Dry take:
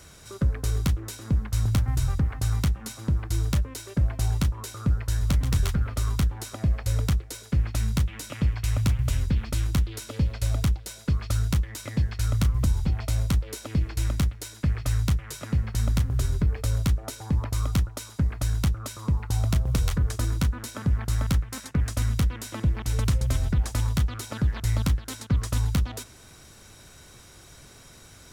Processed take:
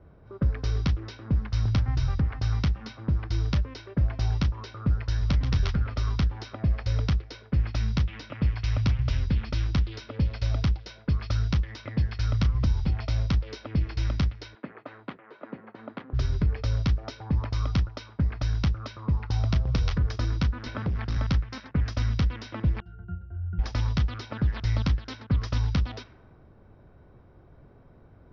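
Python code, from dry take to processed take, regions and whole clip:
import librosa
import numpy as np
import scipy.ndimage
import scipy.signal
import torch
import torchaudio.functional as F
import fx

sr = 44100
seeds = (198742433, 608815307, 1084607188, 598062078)

y = fx.chain(x, sr, fx.highpass(hz=260.0, slope=24),
    fx.peak_eq(hz=5400.0, db=-11.5, octaves=0.26), at=(14.55, 16.13))
y = fx.chain(y, sr, fx.overload_stage(gain_db=23.0),
    fx.band_squash(depth_pct=70), at=(20.66, 21.17))
y = fx.chain(y, sr, fx.peak_eq(hz=1500.0, db=11.5, octaves=0.28),
    fx.octave_resonator(note='F', decay_s=0.31), at=(22.8, 23.59))
y = fx.env_lowpass(y, sr, base_hz=630.0, full_db=-22.0)
y = scipy.signal.sosfilt(scipy.signal.ellip(4, 1.0, 40, 5400.0, 'lowpass', fs=sr, output='sos'), y)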